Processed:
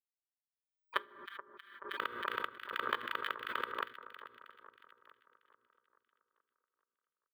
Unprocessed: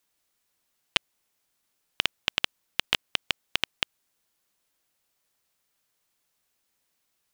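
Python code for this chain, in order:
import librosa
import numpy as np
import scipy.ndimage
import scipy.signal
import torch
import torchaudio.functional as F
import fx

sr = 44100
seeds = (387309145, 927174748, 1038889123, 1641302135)

y = scipy.signal.sosfilt(scipy.signal.butter(4, 2300.0, 'lowpass', fs=sr, output='sos'), x)
y = fx.quant_dither(y, sr, seeds[0], bits=8, dither='none')
y = scipy.signal.sosfilt(scipy.signal.butter(2, 170.0, 'highpass', fs=sr, output='sos'), y)
y = fx.low_shelf(y, sr, hz=310.0, db=-11.5)
y = fx.fixed_phaser(y, sr, hz=650.0, stages=6)
y = fx.pitch_keep_formants(y, sr, semitones=2.5)
y = fx.hum_notches(y, sr, base_hz=60, count=8)
y = fx.echo_split(y, sr, split_hz=1500.0, low_ms=429, high_ms=317, feedback_pct=52, wet_db=-12.5)
y = fx.rev_fdn(y, sr, rt60_s=0.47, lf_ratio=1.45, hf_ratio=0.7, size_ms=27.0, drr_db=17.0)
y = fx.pre_swell(y, sr, db_per_s=72.0)
y = F.gain(torch.from_numpy(y), 4.5).numpy()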